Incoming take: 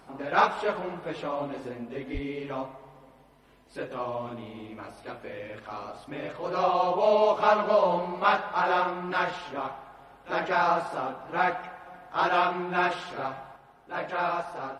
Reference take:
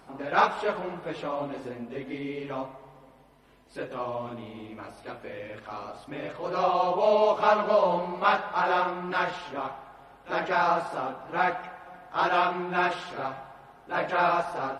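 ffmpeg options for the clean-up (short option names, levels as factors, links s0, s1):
-filter_complex "[0:a]asplit=3[s0][s1][s2];[s0]afade=t=out:st=2.13:d=0.02[s3];[s1]highpass=f=140:w=0.5412,highpass=f=140:w=1.3066,afade=t=in:st=2.13:d=0.02,afade=t=out:st=2.25:d=0.02[s4];[s2]afade=t=in:st=2.25:d=0.02[s5];[s3][s4][s5]amix=inputs=3:normalize=0,asetnsamples=n=441:p=0,asendcmd='13.56 volume volume 4.5dB',volume=1"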